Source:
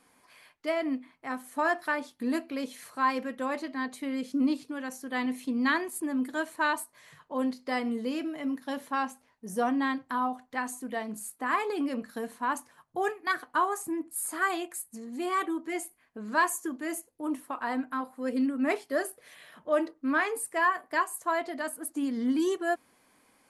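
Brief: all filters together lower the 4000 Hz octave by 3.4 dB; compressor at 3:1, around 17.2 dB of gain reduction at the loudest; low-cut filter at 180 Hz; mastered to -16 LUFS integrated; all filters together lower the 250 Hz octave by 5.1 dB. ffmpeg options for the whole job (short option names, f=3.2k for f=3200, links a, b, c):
-af "highpass=180,equalizer=f=250:t=o:g=-5,equalizer=f=4k:t=o:g=-4.5,acompressor=threshold=-46dB:ratio=3,volume=30dB"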